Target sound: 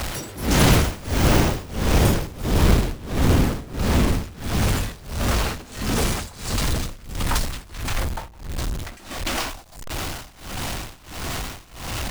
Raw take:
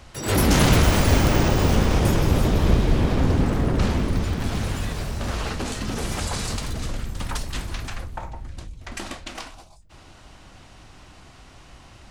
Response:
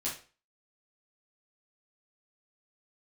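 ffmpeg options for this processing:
-filter_complex "[0:a]aeval=exprs='val(0)+0.5*0.0631*sgn(val(0))':c=same,asplit=2[a][b];[b]alimiter=limit=-12.5dB:level=0:latency=1:release=96,volume=-2dB[c];[a][c]amix=inputs=2:normalize=0,acrusher=bits=3:mode=log:mix=0:aa=0.000001,tremolo=f=1.5:d=0.93,volume=-2.5dB"

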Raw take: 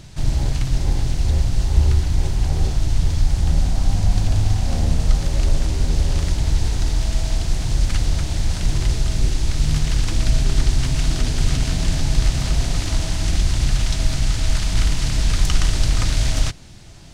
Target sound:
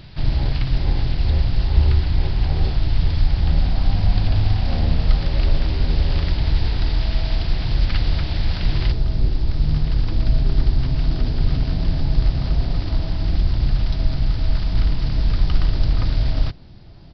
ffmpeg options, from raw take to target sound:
-af "aresample=11025,aresample=44100,asetnsamples=n=441:p=0,asendcmd='8.92 equalizer g -9',equalizer=f=2.6k:w=0.53:g=2"

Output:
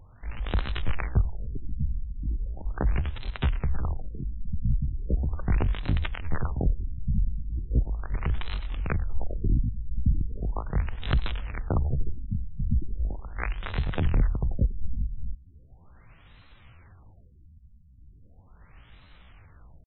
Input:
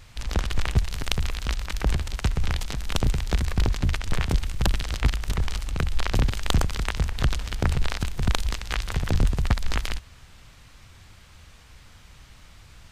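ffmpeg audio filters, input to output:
-af "atempo=0.65,afftfilt=real='re*lt(b*sr/1024,230*pow(4200/230,0.5+0.5*sin(2*PI*0.38*pts/sr)))':imag='im*lt(b*sr/1024,230*pow(4200/230,0.5+0.5*sin(2*PI*0.38*pts/sr)))':win_size=1024:overlap=0.75,volume=-2dB"

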